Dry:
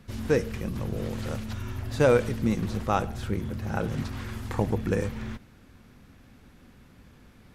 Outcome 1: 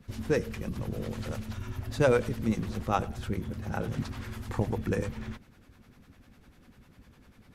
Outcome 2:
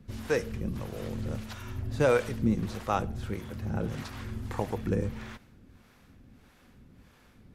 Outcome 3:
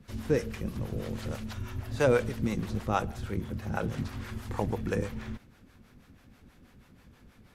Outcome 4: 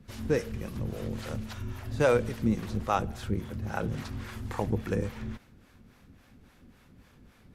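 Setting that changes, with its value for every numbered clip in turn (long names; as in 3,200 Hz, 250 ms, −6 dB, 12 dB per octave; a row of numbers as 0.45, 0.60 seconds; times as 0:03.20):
two-band tremolo in antiphase, speed: 10, 1.6, 6.2, 3.6 Hertz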